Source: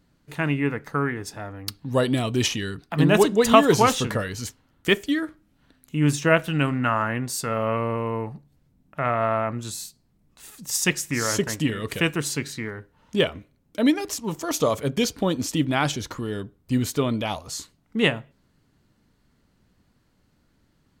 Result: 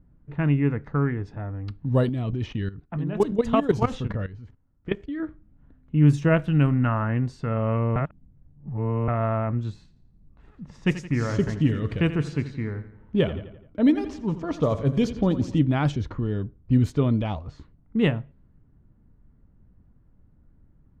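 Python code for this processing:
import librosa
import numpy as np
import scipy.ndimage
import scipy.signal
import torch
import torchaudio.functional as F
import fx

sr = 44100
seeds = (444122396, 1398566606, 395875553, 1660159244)

y = fx.level_steps(x, sr, step_db=15, at=(2.09, 5.2))
y = fx.echo_feedback(y, sr, ms=85, feedback_pct=53, wet_db=-13, at=(9.79, 15.59))
y = fx.edit(y, sr, fx.reverse_span(start_s=7.96, length_s=1.12), tone=tone)
y = fx.riaa(y, sr, side='playback')
y = fx.env_lowpass(y, sr, base_hz=1600.0, full_db=-11.0)
y = y * 10.0 ** (-5.0 / 20.0)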